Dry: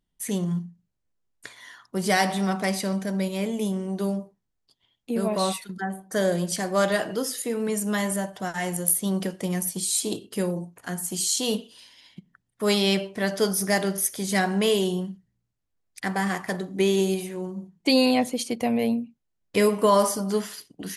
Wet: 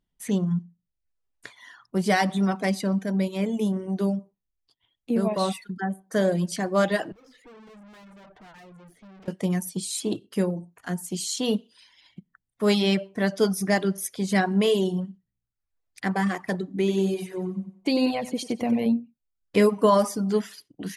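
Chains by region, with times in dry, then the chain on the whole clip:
7.12–9.28 s: low-pass 2.2 kHz + valve stage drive 46 dB, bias 0.6
16.74–18.86 s: compression 2:1, threshold -24 dBFS + feedback delay 93 ms, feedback 46%, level -7.5 dB
whole clip: dynamic bell 210 Hz, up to +4 dB, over -37 dBFS, Q 0.78; reverb removal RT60 0.7 s; treble shelf 6.4 kHz -9.5 dB

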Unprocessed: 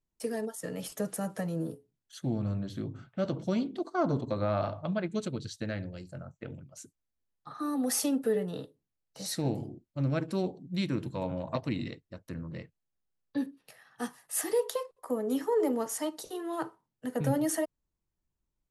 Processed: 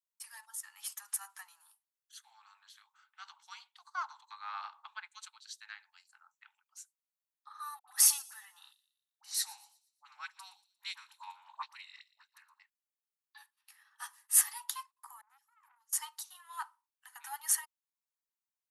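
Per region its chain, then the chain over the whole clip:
7.79–12.60 s: phase dispersion highs, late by 86 ms, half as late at 710 Hz + feedback echo behind a high-pass 117 ms, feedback 40%, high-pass 3.9 kHz, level -13 dB
15.21–15.93 s: amplifier tone stack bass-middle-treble 10-0-1 + transformer saturation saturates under 1 kHz
whole clip: steep high-pass 840 Hz 96 dB/octave; treble shelf 7.9 kHz +7.5 dB; upward expansion 1.5:1, over -47 dBFS; trim +4 dB

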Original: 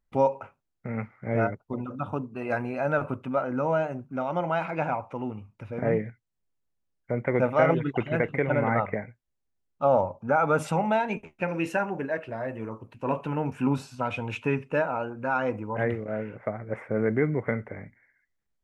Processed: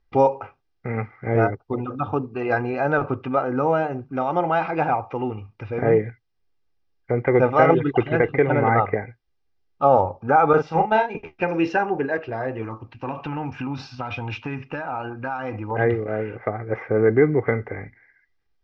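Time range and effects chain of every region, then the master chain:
10.53–11.15 s: gate -25 dBFS, range -10 dB + doubling 37 ms -6 dB + tape noise reduction on one side only decoder only
12.62–15.71 s: peaking EQ 430 Hz -13 dB 0.4 oct + compression, threshold -30 dBFS
whole clip: dynamic bell 2.4 kHz, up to -5 dB, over -43 dBFS, Q 1.1; elliptic low-pass 5.4 kHz, stop band 50 dB; comb 2.5 ms, depth 51%; trim +7.5 dB

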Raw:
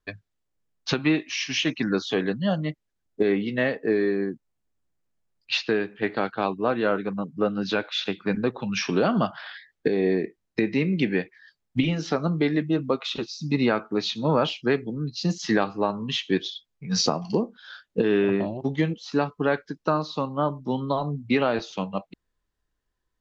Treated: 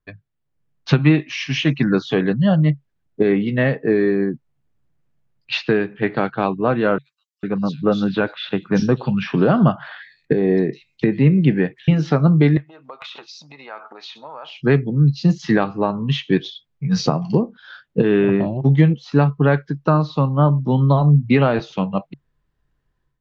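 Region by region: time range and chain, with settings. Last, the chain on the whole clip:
6.98–11.88 s: dynamic bell 2.3 kHz, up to -6 dB, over -48 dBFS, Q 4.6 + bands offset in time highs, lows 450 ms, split 4.2 kHz
12.57–14.59 s: compression 20:1, threshold -34 dBFS + resonant high-pass 800 Hz, resonance Q 1.6 + overload inside the chain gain 27 dB
whole clip: tone controls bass +3 dB, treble -11 dB; level rider gain up to 10.5 dB; peaking EQ 140 Hz +12 dB 0.36 oct; trim -3 dB

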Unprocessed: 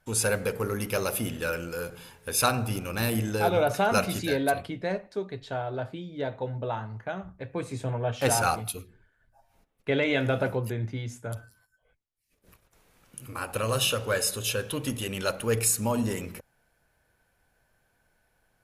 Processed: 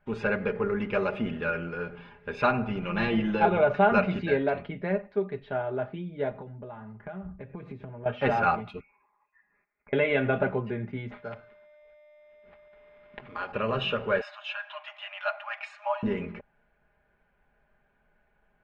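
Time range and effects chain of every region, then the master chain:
2.82–3.45 s: peaking EQ 3.3 kHz +6 dB 0.58 oct + comb 5.9 ms, depth 82%
6.31–8.06 s: bass shelf 330 Hz +7 dB + compression 12:1, threshold -37 dBFS
8.80–9.93 s: high-pass 790 Hz 6 dB/octave + compression 12:1, threshold -53 dBFS + frequency inversion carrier 2.6 kHz
11.10–13.51 s: bass shelf 410 Hz -7 dB + whistle 12 kHz -56 dBFS + sample-rate reducer 5.7 kHz
14.21–16.03 s: brick-wall FIR high-pass 590 Hz + peaking EQ 13 kHz -11 dB 0.63 oct
whole clip: low-pass 2.6 kHz 24 dB/octave; comb 4.9 ms, depth 66%

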